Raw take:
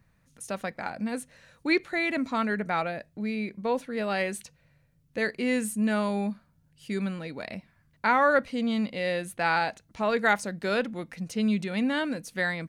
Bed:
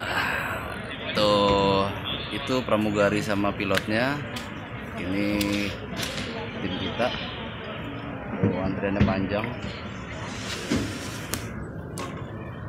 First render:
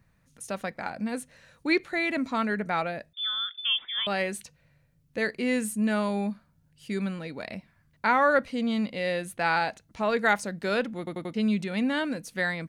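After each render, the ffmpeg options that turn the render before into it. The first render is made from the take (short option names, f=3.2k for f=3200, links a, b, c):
-filter_complex "[0:a]asettb=1/sr,asplit=3[a][b][c];[a]atrim=end=3.134[d];[b]atrim=start=3.13:end=4.07,asetpts=PTS-STARTPTS,afade=t=in:d=0.004:c=qsin,afade=t=out:st=0.936:d=0.004:c=qsin,lowpass=f=3.1k:t=q:w=0.5098,lowpass=f=3.1k:t=q:w=0.6013,lowpass=f=3.1k:t=q:w=0.9,lowpass=f=3.1k:t=q:w=2.563,afreqshift=-3700[e];[c]atrim=start=4.066[f];[d][e]acrossfade=d=0.004:c1=hsin:c2=qsin[g];[g][f]acrossfade=d=0.004:c1=qsin:c2=hsin,asplit=5[h][i][j][k][l];[h]atrim=end=11.072[m];[i]atrim=start=10.978:end=11.072[n];[j]atrim=start=10.978:end=11.072[o];[k]atrim=start=10.978:end=11.072[p];[l]atrim=start=11.338[q];[m][n]acrossfade=d=0.004:c1=hsin:c2=hsin[r];[r][o]acrossfade=d=0.004:c1=hsin:c2=hsin[s];[s][p]acrossfade=d=0.004:c1=hsin:c2=hsin[t];[t][q]acrossfade=d=0.004:c1=hsin:c2=hsin"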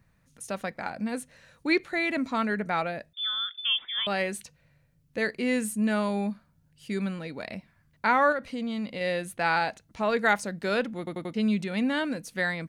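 -filter_complex "[0:a]asettb=1/sr,asplit=3[a][b][c];[a]atrim=end=8.324[d];[b]atrim=start=8.32:end=9.01,asetpts=PTS-STARTPTS,afade=t=in:d=0.004:c=qsin,afade=t=out:st=0.686:d=0.004:c=qsin,acompressor=threshold=-29dB:ratio=3:attack=3.2:release=140:knee=1:detection=peak[e];[c]atrim=start=9.006[f];[d][e]acrossfade=d=0.004:c1=hsin:c2=qsin[g];[g][f]acrossfade=d=0.004:c1=qsin:c2=hsin"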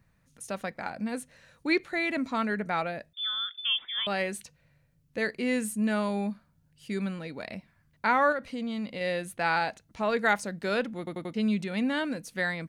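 -af "volume=-1.5dB"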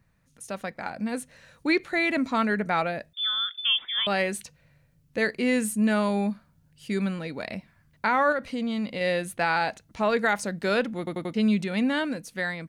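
-af "alimiter=limit=-18dB:level=0:latency=1:release=94,dynaudnorm=f=410:g=5:m=4.5dB"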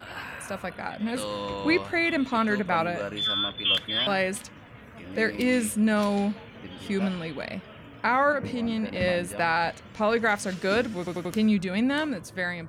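-filter_complex "[1:a]volume=-12dB[a];[0:a][a]amix=inputs=2:normalize=0"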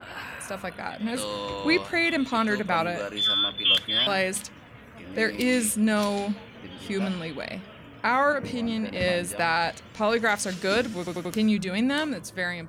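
-af "bandreject=f=50:t=h:w=6,bandreject=f=100:t=h:w=6,bandreject=f=150:t=h:w=6,bandreject=f=200:t=h:w=6,adynamicequalizer=threshold=0.01:dfrequency=3100:dqfactor=0.7:tfrequency=3100:tqfactor=0.7:attack=5:release=100:ratio=0.375:range=3:mode=boostabove:tftype=highshelf"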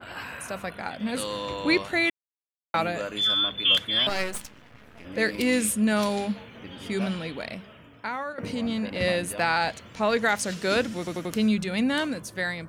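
-filter_complex "[0:a]asettb=1/sr,asplit=3[a][b][c];[a]atrim=end=4.094[d];[b]atrim=start=4.09:end=5.05,asetpts=PTS-STARTPTS,afade=t=in:d=0.004:c=qsin,afade=t=out:st=0.956:d=0.004:c=qsin,aeval=exprs='max(val(0),0)':c=same[e];[c]atrim=start=5.046[f];[d][e]acrossfade=d=0.004:c1=hsin:c2=qsin[g];[g][f]acrossfade=d=0.004:c1=qsin:c2=hsin,asplit=4[h][i][j][k];[h]atrim=end=2.1,asetpts=PTS-STARTPTS,afade=t=out:st=2.096:d=0.004:c=hsin[l];[i]atrim=start=2.1:end=2.74,asetpts=PTS-STARTPTS,volume=0[m];[j]atrim=start=2.74:end=8.38,asetpts=PTS-STARTPTS,afade=t=in:d=0.004:c=hsin,afade=t=out:st=4.57:d=1.07:silence=0.16788[n];[k]atrim=start=8.38,asetpts=PTS-STARTPTS,afade=t=in:d=0.004:c=hsin:silence=0.16788[o];[l][m][n][o]concat=n=4:v=0:a=1"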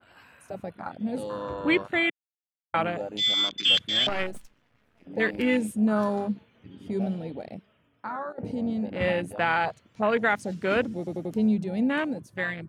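-af "afwtdn=0.0355"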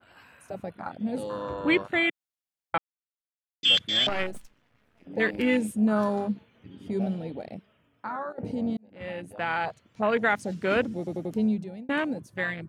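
-filter_complex "[0:a]asplit=5[a][b][c][d][e];[a]atrim=end=2.78,asetpts=PTS-STARTPTS,afade=t=out:st=2.776:d=0.004:c=hsin[f];[b]atrim=start=2.78:end=3.63,asetpts=PTS-STARTPTS,volume=0[g];[c]atrim=start=3.63:end=8.77,asetpts=PTS-STARTPTS,afade=t=in:d=0.004:c=hsin,afade=t=out:st=5.136:d=0.004:c=hsin[h];[d]atrim=start=8.77:end=11.89,asetpts=PTS-STARTPTS,afade=t=in:d=1.76:c=qsin,afade=t=out:st=2.41:d=0.71:c=qsin[i];[e]atrim=start=11.89,asetpts=PTS-STARTPTS,afade=t=in:d=0.004:c=hsin[j];[f][g][h][i][j]concat=n=5:v=0:a=1"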